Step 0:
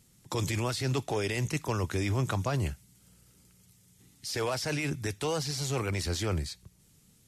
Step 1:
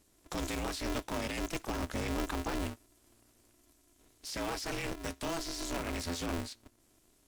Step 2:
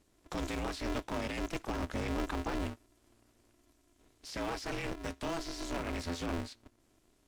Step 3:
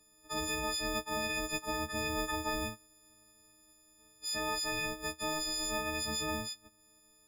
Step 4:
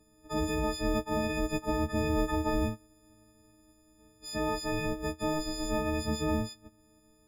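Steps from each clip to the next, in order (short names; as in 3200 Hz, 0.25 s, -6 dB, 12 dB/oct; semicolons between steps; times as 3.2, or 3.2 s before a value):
polarity switched at an audio rate 170 Hz; gain -5.5 dB
LPF 3800 Hz 6 dB/oct
frequency quantiser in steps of 6 st; gain -3 dB
tilt shelf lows +8.5 dB; gain +2.5 dB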